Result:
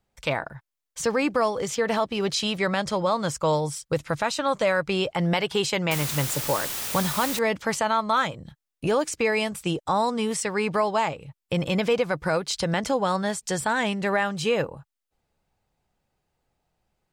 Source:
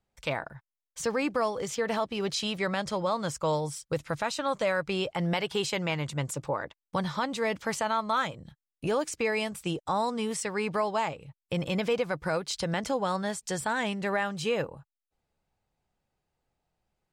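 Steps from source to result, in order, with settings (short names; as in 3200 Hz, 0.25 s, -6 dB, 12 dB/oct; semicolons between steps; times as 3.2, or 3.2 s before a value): 5.91–7.39 requantised 6-bit, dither triangular; gain +5 dB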